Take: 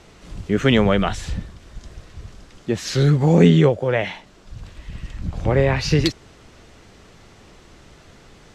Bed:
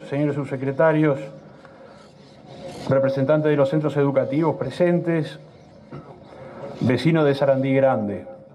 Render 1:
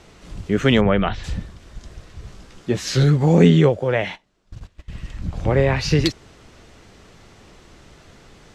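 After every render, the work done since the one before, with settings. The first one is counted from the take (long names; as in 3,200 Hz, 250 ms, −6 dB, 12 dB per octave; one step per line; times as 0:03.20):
0:00.80–0:01.23: low-pass filter 2,200 Hz → 4,700 Hz 24 dB per octave
0:02.22–0:03.04: double-tracking delay 16 ms −4.5 dB
0:03.93–0:04.91: noise gate −36 dBFS, range −18 dB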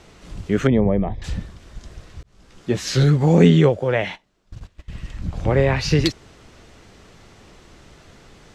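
0:00.67–0:01.22: moving average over 31 samples
0:02.23–0:02.70: fade in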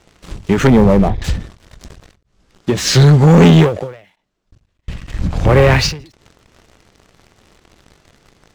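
leveller curve on the samples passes 3
every ending faded ahead of time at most 130 dB per second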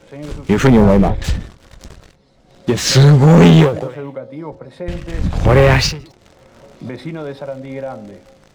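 mix in bed −9 dB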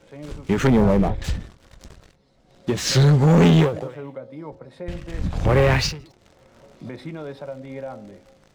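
level −7 dB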